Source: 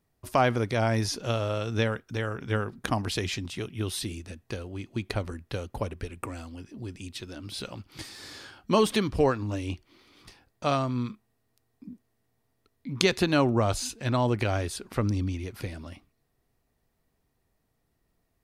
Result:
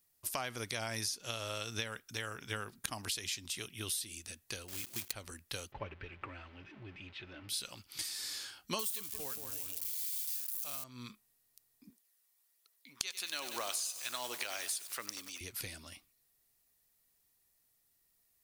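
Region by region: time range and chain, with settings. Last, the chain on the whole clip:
4.68–5.13 s: block-companded coder 3-bit + transient shaper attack -1 dB, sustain +7 dB
5.72–7.49 s: jump at every zero crossing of -41 dBFS + low-pass 2.6 kHz 24 dB/octave + comb of notches 240 Hz
8.79–10.84 s: zero-crossing glitches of -21.5 dBFS + feedback echo behind a low-pass 176 ms, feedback 52%, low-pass 1.6 kHz, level -6.5 dB
11.90–15.41 s: Bessel high-pass 720 Hz + phaser 1.2 Hz, delay 1 ms, feedback 29% + bit-crushed delay 95 ms, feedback 80%, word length 7-bit, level -13 dB
whole clip: pre-emphasis filter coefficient 0.97; compression 16:1, threshold -42 dBFS; bass shelf 310 Hz +7.5 dB; trim +8 dB

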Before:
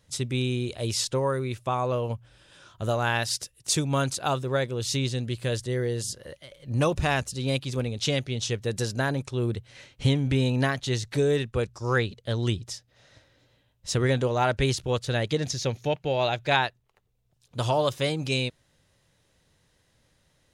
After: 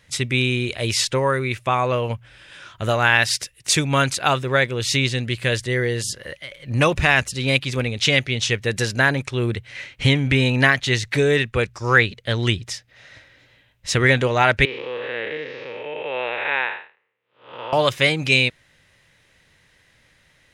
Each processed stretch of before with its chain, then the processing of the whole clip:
14.65–17.73 s: spectral blur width 245 ms + cabinet simulation 450–2700 Hz, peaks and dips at 480 Hz +6 dB, 680 Hz -10 dB, 1.5 kHz -4 dB, 2.3 kHz -3 dB
whole clip: peaking EQ 2.1 kHz +12.5 dB 1.2 oct; loudness maximiser +5.5 dB; trim -1 dB

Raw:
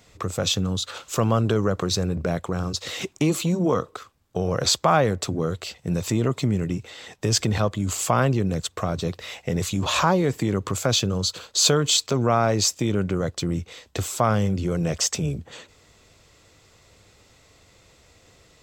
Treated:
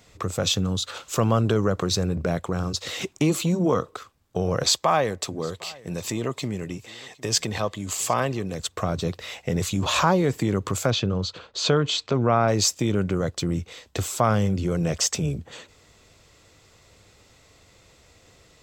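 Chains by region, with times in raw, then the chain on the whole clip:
4.63–8.60 s: bass shelf 300 Hz -10 dB + band-stop 1.4 kHz, Q 8.2 + delay 758 ms -23.5 dB
10.90–12.48 s: low-pass 3.4 kHz + tape noise reduction on one side only decoder only
whole clip: none

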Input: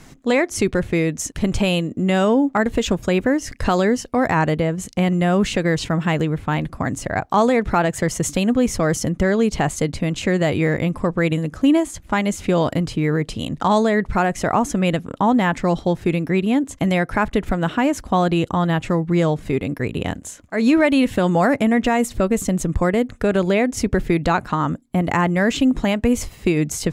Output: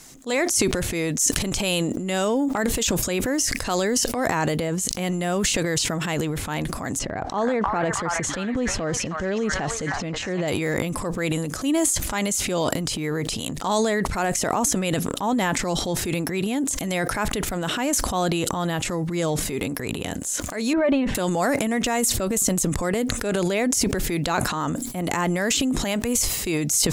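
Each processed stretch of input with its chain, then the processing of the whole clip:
6.99–10.48 s: tape spacing loss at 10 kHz 26 dB + repeats whose band climbs or falls 315 ms, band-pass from 1.2 kHz, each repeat 0.7 oct, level 0 dB
20.73–21.15 s: low-pass 1.4 kHz + comb 5.1 ms, depth 52%
whole clip: tone controls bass -6 dB, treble +14 dB; transient shaper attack -5 dB, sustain +10 dB; decay stretcher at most 36 dB/s; trim -4.5 dB

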